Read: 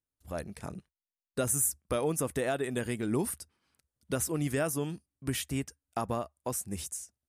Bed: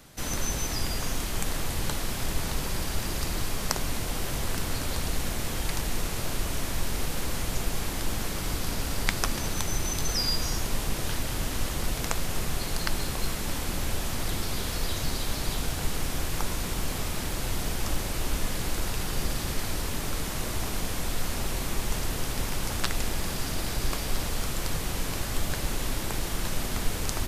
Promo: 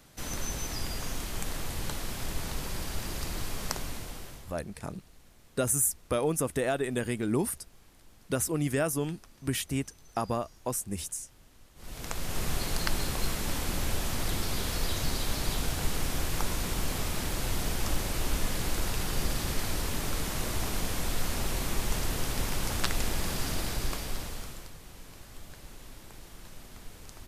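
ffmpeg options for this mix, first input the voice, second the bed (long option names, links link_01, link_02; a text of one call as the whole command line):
ffmpeg -i stem1.wav -i stem2.wav -filter_complex "[0:a]adelay=4200,volume=2dB[link_01];[1:a]volume=22dB,afade=type=out:start_time=3.69:duration=0.87:silence=0.0707946,afade=type=in:start_time=11.75:duration=0.75:silence=0.0446684,afade=type=out:start_time=23.51:duration=1.21:silence=0.141254[link_02];[link_01][link_02]amix=inputs=2:normalize=0" out.wav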